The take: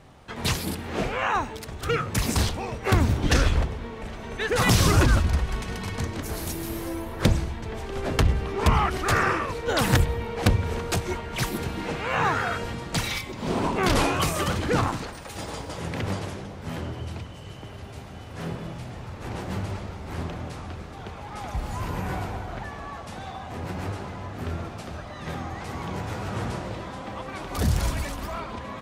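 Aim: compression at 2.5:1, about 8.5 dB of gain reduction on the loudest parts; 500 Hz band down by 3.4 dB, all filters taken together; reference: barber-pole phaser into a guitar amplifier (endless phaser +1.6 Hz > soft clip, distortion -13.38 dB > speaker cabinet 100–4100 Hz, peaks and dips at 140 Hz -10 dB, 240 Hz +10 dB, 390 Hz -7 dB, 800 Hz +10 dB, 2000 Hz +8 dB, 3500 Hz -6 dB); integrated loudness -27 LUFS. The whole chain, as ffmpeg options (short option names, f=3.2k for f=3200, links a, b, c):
-filter_complex "[0:a]equalizer=f=500:t=o:g=-3.5,acompressor=threshold=-28dB:ratio=2.5,asplit=2[a][b];[b]afreqshift=1.6[c];[a][c]amix=inputs=2:normalize=1,asoftclip=threshold=-29.5dB,highpass=100,equalizer=f=140:t=q:w=4:g=-10,equalizer=f=240:t=q:w=4:g=10,equalizer=f=390:t=q:w=4:g=-7,equalizer=f=800:t=q:w=4:g=10,equalizer=f=2k:t=q:w=4:g=8,equalizer=f=3.5k:t=q:w=4:g=-6,lowpass=f=4.1k:w=0.5412,lowpass=f=4.1k:w=1.3066,volume=9.5dB"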